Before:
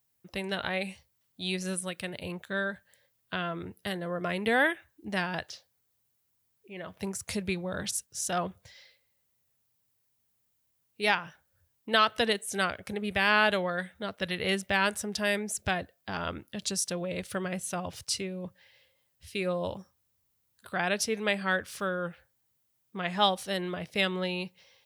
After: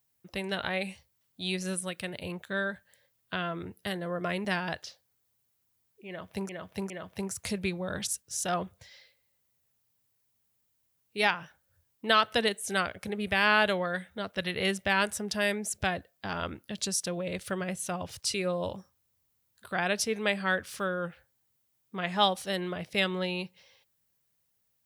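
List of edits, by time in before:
4.45–5.11 s: delete
6.74–7.15 s: loop, 3 plays
18.18–19.35 s: delete

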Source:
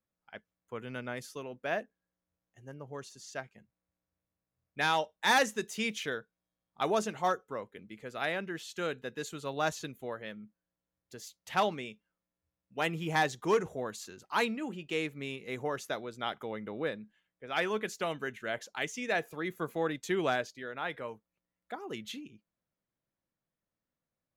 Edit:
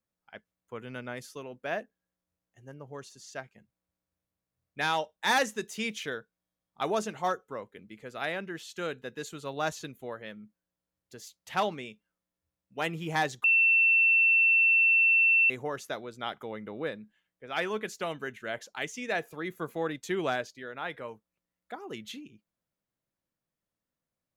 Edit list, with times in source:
13.44–15.50 s: bleep 2.69 kHz -19 dBFS

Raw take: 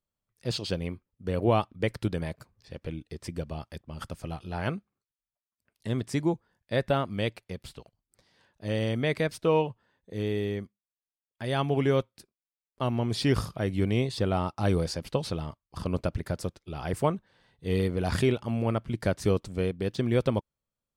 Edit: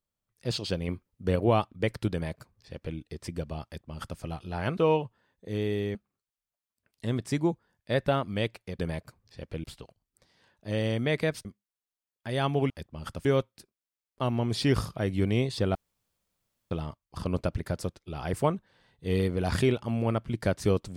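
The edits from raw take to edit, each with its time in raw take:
0.88–1.36 s: gain +4 dB
2.12–2.97 s: copy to 7.61 s
3.65–4.20 s: copy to 11.85 s
9.42–10.60 s: move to 4.77 s
14.35–15.31 s: room tone

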